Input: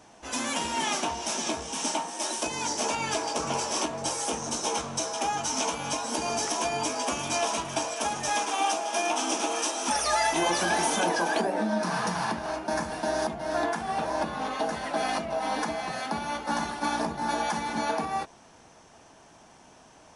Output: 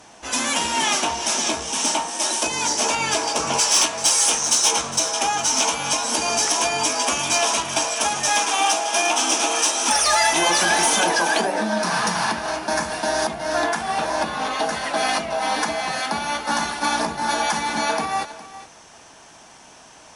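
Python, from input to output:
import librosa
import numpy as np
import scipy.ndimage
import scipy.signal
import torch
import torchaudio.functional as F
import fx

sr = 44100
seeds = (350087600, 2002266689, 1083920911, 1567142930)

y = fx.tilt_shelf(x, sr, db=fx.steps((0.0, -3.0), (3.58, -9.5), (4.7, -4.5)), hz=970.0)
y = fx.fold_sine(y, sr, drive_db=3, ceiling_db=-9.0)
y = y + 10.0 ** (-16.0 / 20.0) * np.pad(y, (int(410 * sr / 1000.0), 0))[:len(y)]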